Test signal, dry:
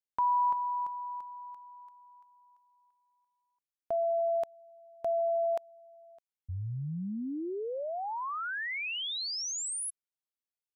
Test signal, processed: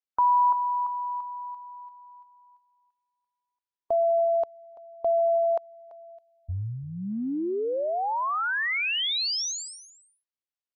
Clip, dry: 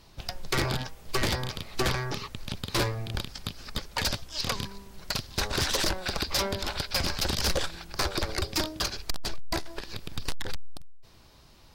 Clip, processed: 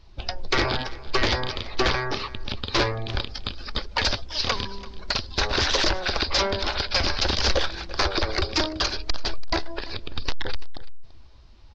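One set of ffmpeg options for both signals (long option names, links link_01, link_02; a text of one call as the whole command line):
ffmpeg -i in.wav -filter_complex "[0:a]lowpass=frequency=5600:width=0.5412,lowpass=frequency=5600:width=1.3066,afftdn=noise_reduction=13:noise_floor=-48,equalizer=frequency=150:width=1.7:gain=-12,asplit=2[link_01][link_02];[link_02]acompressor=threshold=-38dB:ratio=6:attack=0.19:release=58:knee=1:detection=peak,volume=-2dB[link_03];[link_01][link_03]amix=inputs=2:normalize=0,aecho=1:1:337:0.112,volume=5dB" out.wav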